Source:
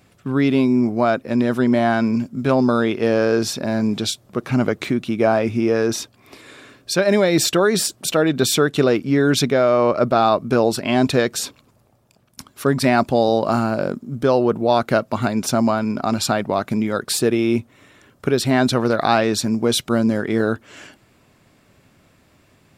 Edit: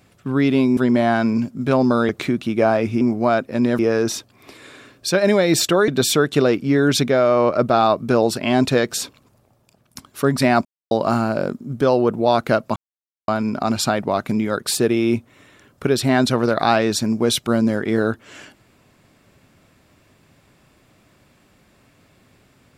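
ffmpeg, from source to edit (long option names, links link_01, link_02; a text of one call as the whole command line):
ffmpeg -i in.wav -filter_complex "[0:a]asplit=10[link_01][link_02][link_03][link_04][link_05][link_06][link_07][link_08][link_09][link_10];[link_01]atrim=end=0.772[link_11];[link_02]atrim=start=1.548:end=2.872[link_12];[link_03]atrim=start=4.708:end=5.632[link_13];[link_04]atrim=start=0.768:end=1.552[link_14];[link_05]atrim=start=5.628:end=7.722[link_15];[link_06]atrim=start=8.298:end=13.07,asetpts=PTS-STARTPTS,afade=type=out:start_time=4.768:duration=0.004:curve=hsin[link_16];[link_07]atrim=start=13.07:end=13.33,asetpts=PTS-STARTPTS,volume=0[link_17];[link_08]atrim=start=13.33:end=15.18,asetpts=PTS-STARTPTS,afade=type=in:duration=0.004:curve=hsin,afade=type=out:start_time=1.846:duration=0.004:curve=hsin[link_18];[link_09]atrim=start=15.18:end=15.7,asetpts=PTS-STARTPTS,volume=0[link_19];[link_10]atrim=start=15.7,asetpts=PTS-STARTPTS,afade=type=in:duration=0.004:curve=hsin[link_20];[link_11][link_12]acrossfade=duration=0.004:curve1=hsin:curve2=hsin[link_21];[link_21][link_13]acrossfade=duration=0.004:curve1=hsin:curve2=hsin[link_22];[link_22][link_14]acrossfade=duration=0.004:curve1=hsin:curve2=hsin[link_23];[link_23][link_15]acrossfade=duration=0.004:curve1=hsin:curve2=hsin[link_24];[link_16][link_17][link_18][link_19][link_20]concat=n=5:v=0:a=1[link_25];[link_24][link_25]acrossfade=duration=0.004:curve1=hsin:curve2=hsin" out.wav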